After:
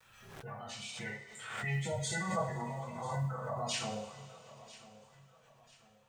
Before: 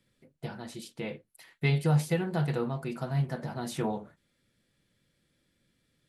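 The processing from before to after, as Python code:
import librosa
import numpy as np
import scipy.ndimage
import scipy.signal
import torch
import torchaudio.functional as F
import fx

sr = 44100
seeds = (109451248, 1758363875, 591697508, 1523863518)

y = fx.spec_gate(x, sr, threshold_db=-25, keep='strong')
y = fx.formant_shift(y, sr, semitones=-5)
y = fx.tone_stack(y, sr, knobs='10-0-10')
y = fx.level_steps(y, sr, step_db=9)
y = fx.rev_double_slope(y, sr, seeds[0], early_s=0.51, late_s=3.5, knee_db=-20, drr_db=-8.5)
y = fx.quant_companded(y, sr, bits=8)
y = fx.peak_eq(y, sr, hz=860.0, db=12.5, octaves=2.2)
y = fx.echo_feedback(y, sr, ms=993, feedback_pct=37, wet_db=-18.0)
y = fx.pre_swell(y, sr, db_per_s=49.0)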